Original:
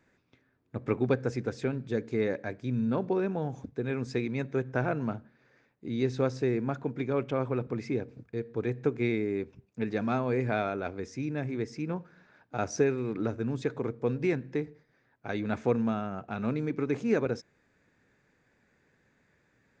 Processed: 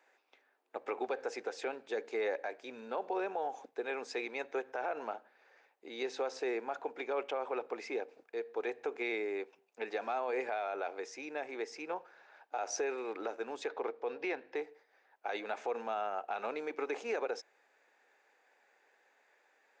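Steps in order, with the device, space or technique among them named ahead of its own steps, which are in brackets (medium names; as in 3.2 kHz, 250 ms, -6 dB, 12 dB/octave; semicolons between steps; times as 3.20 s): laptop speaker (high-pass 440 Hz 24 dB/octave; peaking EQ 800 Hz +9 dB 0.39 oct; peaking EQ 2.8 kHz +4 dB 0.4 oct; peak limiter -26.5 dBFS, peak gain reduction 11 dB); 13.67–14.56 s: low-pass 5.3 kHz 24 dB/octave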